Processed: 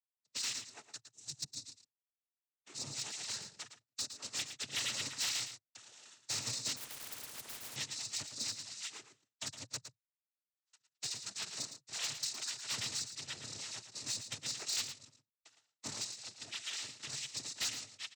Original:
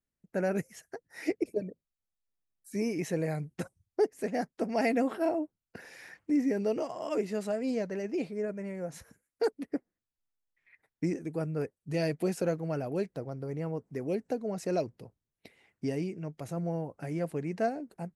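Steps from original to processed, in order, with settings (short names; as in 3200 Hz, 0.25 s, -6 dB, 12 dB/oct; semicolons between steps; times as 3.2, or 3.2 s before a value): FFT order left unsorted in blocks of 256 samples; gate with hold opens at -50 dBFS; spectral noise reduction 7 dB; 1.07–1.65 EQ curve 150 Hz 0 dB, 500 Hz -17 dB, 1800 Hz -23 dB, 6100 Hz -10 dB; compressor 6:1, threshold -33 dBFS, peak gain reduction 11.5 dB; noise vocoder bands 12; soft clip -35.5 dBFS, distortion -13 dB; on a send: echo 0.112 s -10 dB; 6.76–7.76 on the sum: spectral compressor 10:1; gain +5.5 dB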